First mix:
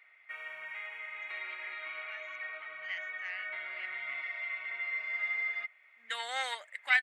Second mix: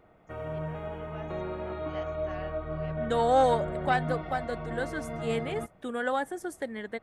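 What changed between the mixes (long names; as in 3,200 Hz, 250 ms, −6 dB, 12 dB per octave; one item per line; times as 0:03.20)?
first voice: entry −0.95 s
second voice: entry −3.00 s
master: remove high-pass with resonance 2,100 Hz, resonance Q 8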